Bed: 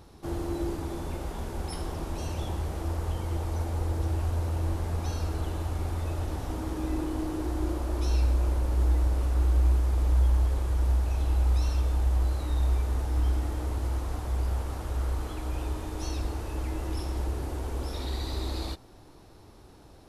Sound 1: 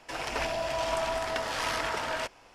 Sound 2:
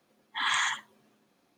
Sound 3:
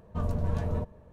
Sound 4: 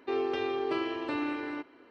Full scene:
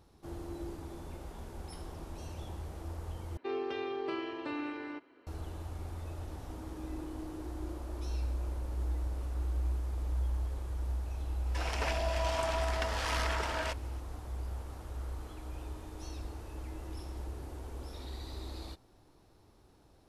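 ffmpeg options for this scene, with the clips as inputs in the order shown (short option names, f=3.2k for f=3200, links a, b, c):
-filter_complex "[0:a]volume=-10.5dB,asplit=2[a][b];[a]atrim=end=3.374[c];[4:a]atrim=end=1.9,asetpts=PTS-STARTPTS,volume=-5.5dB[d];[b]atrim=start=5.266[e];[1:a]atrim=end=2.54,asetpts=PTS-STARTPTS,volume=-3.5dB,afade=t=in:d=0.004:c=hsin,afade=t=out:st=2.536:d=0.004:c=hsin,adelay=505386S[f];[c][d]acrossfade=d=0.004:c1=hsin:c2=hsin[g];[g][e]acrossfade=d=0.004:c1=hsin:c2=hsin[h];[h][f]amix=inputs=2:normalize=0"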